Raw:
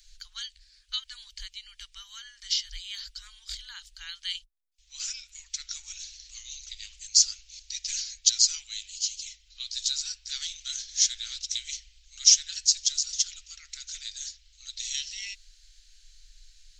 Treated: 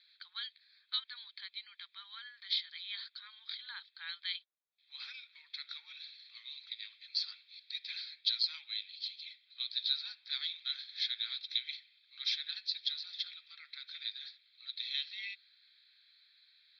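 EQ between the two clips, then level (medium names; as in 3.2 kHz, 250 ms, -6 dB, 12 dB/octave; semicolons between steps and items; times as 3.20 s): high-pass 370 Hz 24 dB/octave; Butterworth band-stop 2.9 kHz, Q 5.1; steep low-pass 4.2 kHz 72 dB/octave; 0.0 dB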